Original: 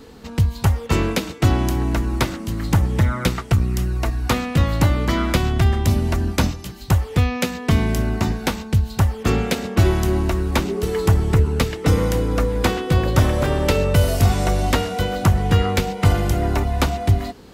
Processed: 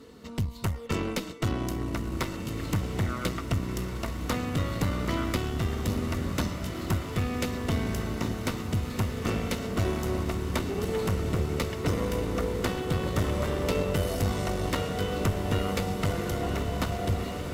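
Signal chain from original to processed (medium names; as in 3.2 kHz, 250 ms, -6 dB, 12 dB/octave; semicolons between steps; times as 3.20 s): in parallel at +0.5 dB: compression, threshold -24 dBFS, peak gain reduction 13.5 dB; on the sum: comb of notches 820 Hz; valve stage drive 11 dB, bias 0.75; echo that smears into a reverb 1679 ms, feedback 64%, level -6.5 dB; trim -8 dB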